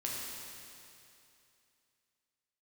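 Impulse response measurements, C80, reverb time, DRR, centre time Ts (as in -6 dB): 0.0 dB, 2.7 s, -4.5 dB, 0.148 s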